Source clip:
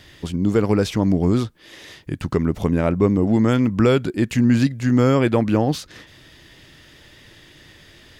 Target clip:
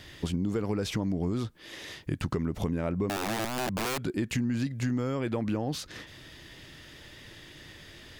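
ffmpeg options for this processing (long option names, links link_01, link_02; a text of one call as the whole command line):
ffmpeg -i in.wav -filter_complex "[0:a]asplit=2[link_01][link_02];[link_02]alimiter=limit=-16.5dB:level=0:latency=1:release=16,volume=2dB[link_03];[link_01][link_03]amix=inputs=2:normalize=0,acompressor=threshold=-17dB:ratio=10,asettb=1/sr,asplit=3[link_04][link_05][link_06];[link_04]atrim=end=3.094[link_07];[link_05]atrim=start=3.09:end=3.99,asetpts=PTS-STARTPTS,afade=type=in:duration=0.004:curve=qsin,afade=type=out:start_time=0.896:duration=0.004:curve=qsin,aeval=exprs='(mod(7.08*val(0)+1,2)-1)/7.08':channel_layout=same[link_08];[link_06]atrim=start=3.986[link_09];[link_07][link_08]acrossfade=duration=0.004:curve1=hsin:curve2=qsin[link_10];[link_10][link_09]acrossfade=duration=0.004:curve1=qsin:curve2=hsin,volume=-8.5dB" out.wav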